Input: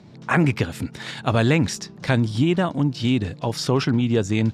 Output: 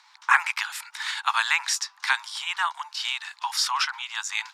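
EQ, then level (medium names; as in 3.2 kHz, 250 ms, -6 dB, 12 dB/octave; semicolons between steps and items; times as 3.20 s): steep high-pass 880 Hz 72 dB/octave; peaking EQ 2.8 kHz -2.5 dB 0.77 oct; +5.0 dB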